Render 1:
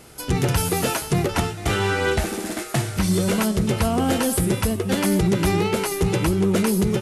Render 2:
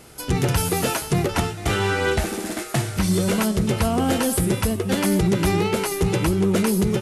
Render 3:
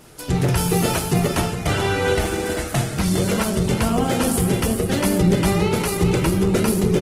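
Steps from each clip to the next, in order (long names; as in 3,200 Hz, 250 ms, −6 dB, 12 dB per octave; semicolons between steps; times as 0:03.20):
no processing that can be heard
single-tap delay 411 ms −8 dB; convolution reverb RT60 0.75 s, pre-delay 7 ms, DRR 6.5 dB; Opus 16 kbit/s 48,000 Hz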